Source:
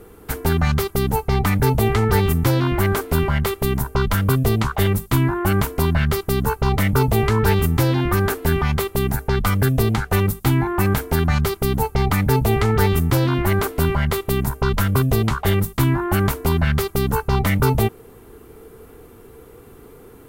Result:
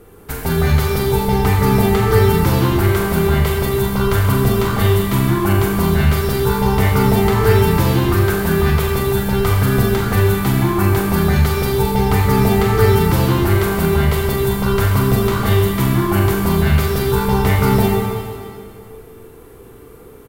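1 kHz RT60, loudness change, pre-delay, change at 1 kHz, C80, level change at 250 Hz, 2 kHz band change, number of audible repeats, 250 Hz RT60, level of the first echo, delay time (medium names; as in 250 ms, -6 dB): 2.2 s, +4.0 dB, 25 ms, +3.5 dB, 1.0 dB, +4.5 dB, +3.0 dB, 1, 2.2 s, -7.0 dB, 41 ms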